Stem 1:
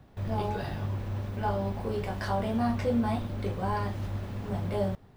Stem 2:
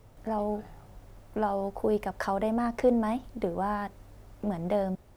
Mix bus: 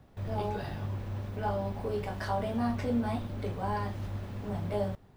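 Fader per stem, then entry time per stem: -3.0, -13.0 dB; 0.00, 0.00 s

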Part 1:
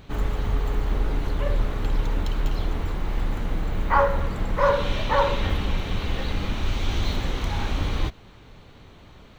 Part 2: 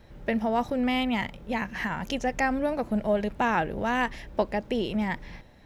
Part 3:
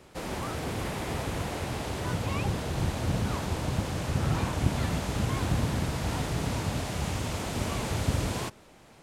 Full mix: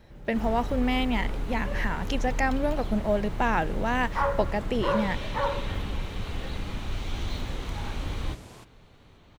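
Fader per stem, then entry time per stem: -7.0, -0.5, -15.5 dB; 0.25, 0.00, 0.15 s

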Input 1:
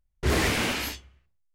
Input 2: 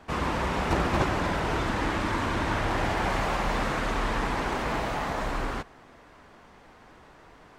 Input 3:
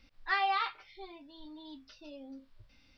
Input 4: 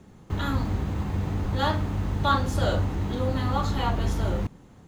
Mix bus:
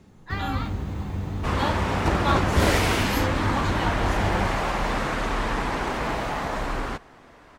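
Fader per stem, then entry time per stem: +0.5, +2.0, -4.0, -2.0 dB; 2.30, 1.35, 0.00, 0.00 s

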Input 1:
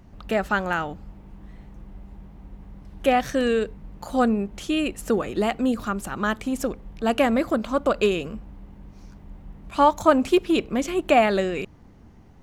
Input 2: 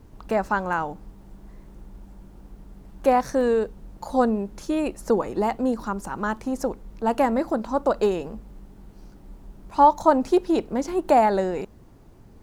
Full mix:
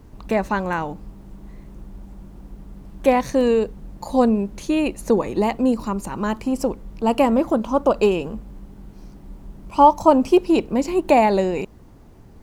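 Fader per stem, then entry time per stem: -5.0, +2.5 dB; 0.00, 0.00 s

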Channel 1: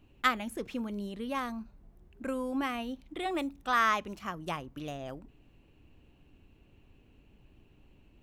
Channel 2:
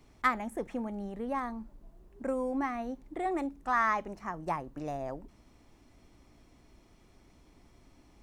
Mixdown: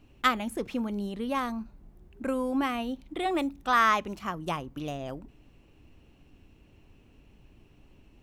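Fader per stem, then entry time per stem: +3.0, -9.0 dB; 0.00, 0.00 s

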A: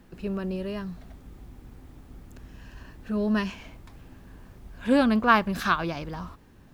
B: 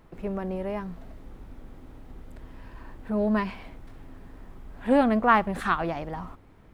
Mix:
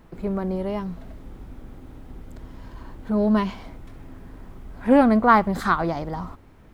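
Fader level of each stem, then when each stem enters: -5.0, +2.5 dB; 0.00, 0.00 s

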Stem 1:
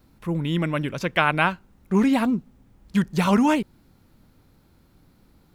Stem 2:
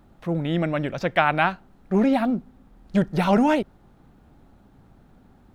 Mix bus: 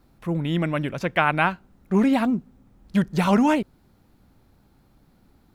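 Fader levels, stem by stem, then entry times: -3.5, -8.5 dB; 0.00, 0.00 s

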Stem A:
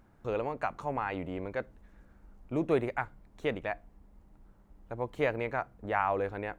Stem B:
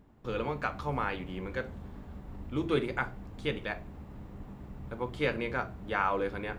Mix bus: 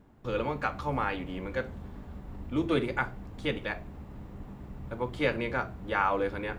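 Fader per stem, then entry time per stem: -7.0, +1.5 dB; 0.00, 0.00 s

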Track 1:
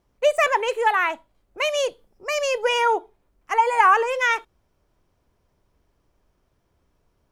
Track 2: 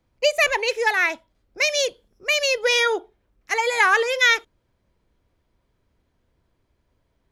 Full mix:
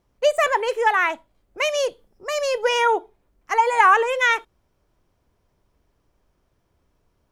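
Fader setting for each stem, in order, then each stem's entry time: 0.0, -13.0 dB; 0.00, 0.00 s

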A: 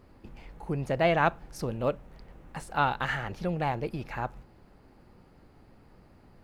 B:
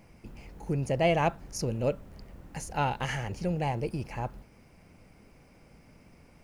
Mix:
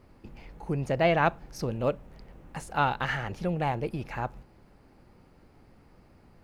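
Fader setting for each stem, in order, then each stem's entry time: -1.0, -12.0 dB; 0.00, 0.00 s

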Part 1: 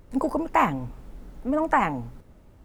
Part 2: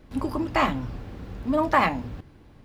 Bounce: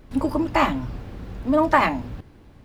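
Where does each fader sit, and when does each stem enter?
-4.0, +1.5 dB; 0.00, 0.00 s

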